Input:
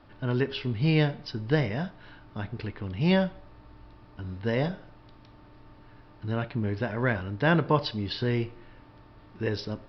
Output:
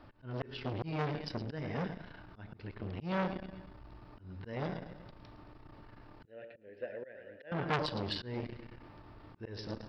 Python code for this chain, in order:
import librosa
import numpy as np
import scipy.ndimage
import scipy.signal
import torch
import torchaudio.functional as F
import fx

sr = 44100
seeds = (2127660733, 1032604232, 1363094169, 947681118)

y = fx.peak_eq(x, sr, hz=3500.0, db=-2.5, octaves=0.77)
y = fx.echo_feedback(y, sr, ms=111, feedback_pct=47, wet_db=-12.0)
y = fx.auto_swell(y, sr, attack_ms=339.0)
y = fx.vowel_filter(y, sr, vowel='e', at=(6.25, 7.52))
y = fx.transformer_sat(y, sr, knee_hz=2500.0)